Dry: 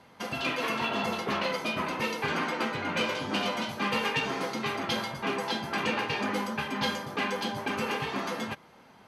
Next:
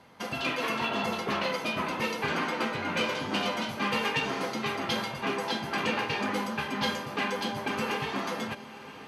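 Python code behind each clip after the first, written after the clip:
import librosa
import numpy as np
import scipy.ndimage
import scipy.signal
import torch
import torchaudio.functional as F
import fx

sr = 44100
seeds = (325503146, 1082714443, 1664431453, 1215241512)

y = fx.echo_diffused(x, sr, ms=977, feedback_pct=43, wet_db=-15.0)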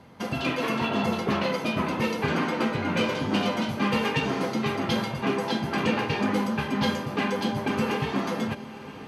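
y = fx.low_shelf(x, sr, hz=430.0, db=10.5)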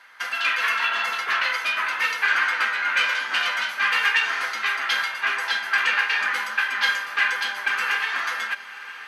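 y = fx.highpass_res(x, sr, hz=1600.0, q=3.3)
y = y * librosa.db_to_amplitude(4.5)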